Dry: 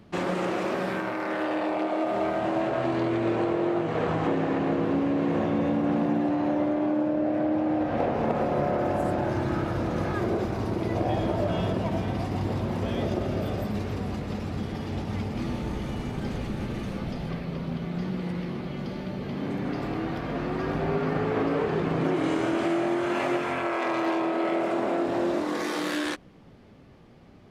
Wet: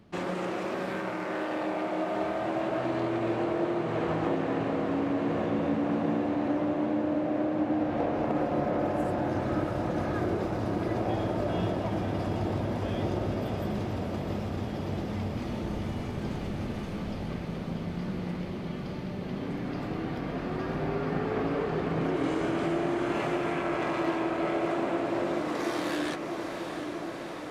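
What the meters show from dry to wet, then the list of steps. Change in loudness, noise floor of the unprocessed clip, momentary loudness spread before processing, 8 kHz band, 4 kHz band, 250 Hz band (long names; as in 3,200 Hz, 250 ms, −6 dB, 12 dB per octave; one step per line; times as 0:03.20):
−3.0 dB, −50 dBFS, 7 LU, can't be measured, −3.0 dB, −3.0 dB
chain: feedback delay with all-pass diffusion 710 ms, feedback 77%, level −7 dB
level −4.5 dB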